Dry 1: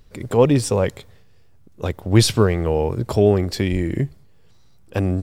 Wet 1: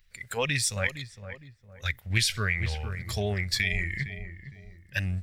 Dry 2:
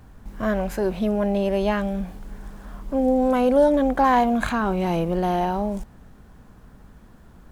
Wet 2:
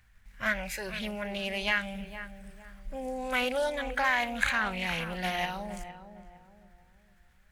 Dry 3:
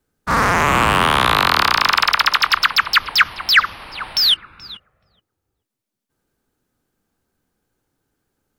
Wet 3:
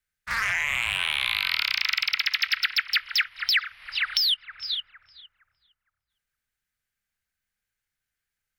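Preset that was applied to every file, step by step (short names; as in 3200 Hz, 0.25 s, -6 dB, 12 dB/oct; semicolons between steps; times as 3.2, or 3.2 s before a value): spectral noise reduction 11 dB; passive tone stack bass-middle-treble 10-0-10; in parallel at -2 dB: level quantiser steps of 12 dB; on the sum: ten-band EQ 250 Hz +6 dB, 1000 Hz -5 dB, 2000 Hz +12 dB; on a send: darkening echo 0.46 s, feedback 39%, low-pass 1100 Hz, level -10.5 dB; on the sum: compressor 6:1, threshold -22 dBFS; Doppler distortion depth 0.18 ms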